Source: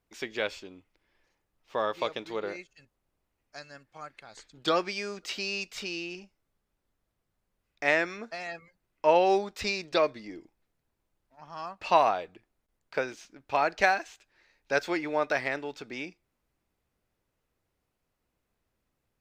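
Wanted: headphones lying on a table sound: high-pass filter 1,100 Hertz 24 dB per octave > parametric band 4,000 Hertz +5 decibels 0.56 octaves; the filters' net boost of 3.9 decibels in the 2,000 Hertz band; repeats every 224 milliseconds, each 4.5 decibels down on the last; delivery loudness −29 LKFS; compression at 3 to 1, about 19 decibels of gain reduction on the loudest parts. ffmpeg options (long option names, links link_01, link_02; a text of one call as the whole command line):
ffmpeg -i in.wav -af "equalizer=frequency=2000:width_type=o:gain=4.5,acompressor=threshold=-43dB:ratio=3,highpass=frequency=1100:width=0.5412,highpass=frequency=1100:width=1.3066,equalizer=frequency=4000:width_type=o:width=0.56:gain=5,aecho=1:1:224|448|672|896|1120|1344|1568|1792|2016:0.596|0.357|0.214|0.129|0.0772|0.0463|0.0278|0.0167|0.01,volume=14.5dB" out.wav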